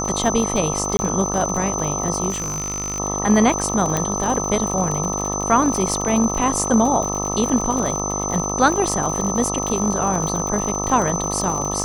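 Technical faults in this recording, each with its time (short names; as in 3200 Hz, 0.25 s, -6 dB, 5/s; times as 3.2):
buzz 50 Hz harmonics 26 -26 dBFS
crackle 77/s -24 dBFS
tone 6100 Hz -25 dBFS
0.97–0.99 gap 20 ms
2.29–3 clipped -21 dBFS
3.97 pop -5 dBFS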